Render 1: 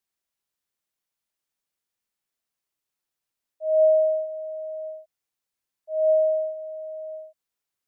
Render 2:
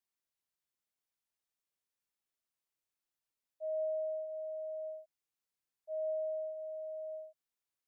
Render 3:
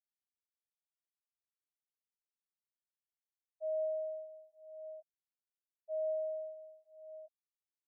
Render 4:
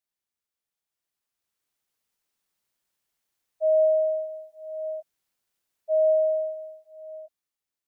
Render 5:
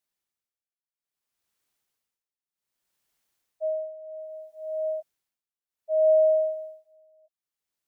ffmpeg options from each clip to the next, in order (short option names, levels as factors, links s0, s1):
-af "acompressor=threshold=0.0282:ratio=3,volume=0.447"
-filter_complex "[0:a]afftfilt=real='re*gte(hypot(re,im),0.0355)':imag='im*gte(hypot(re,im),0.0355)':win_size=1024:overlap=0.75,asplit=2[s0][s1];[s1]adelay=9.9,afreqshift=0.43[s2];[s0][s2]amix=inputs=2:normalize=1,volume=1.26"
-af "dynaudnorm=f=420:g=7:m=3.16,volume=1.88"
-af "tremolo=f=0.63:d=0.94,volume=1.5"